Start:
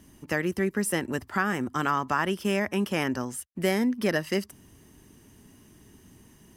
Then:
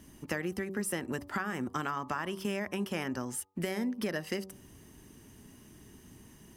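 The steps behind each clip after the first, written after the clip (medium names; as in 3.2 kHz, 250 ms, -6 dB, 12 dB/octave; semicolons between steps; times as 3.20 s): compression, threshold -30 dBFS, peak gain reduction 10 dB; de-hum 95.58 Hz, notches 13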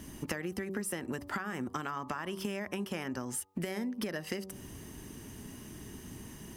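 compression, threshold -41 dBFS, peak gain reduction 12.5 dB; trim +7.5 dB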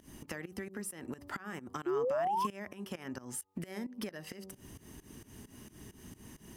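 volume shaper 132 bpm, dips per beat 2, -19 dB, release 177 ms; painted sound rise, 1.86–2.47 s, 340–1100 Hz -28 dBFS; trim -3.5 dB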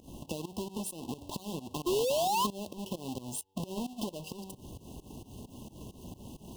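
square wave that keeps the level; brick-wall FIR band-stop 1.1–2.6 kHz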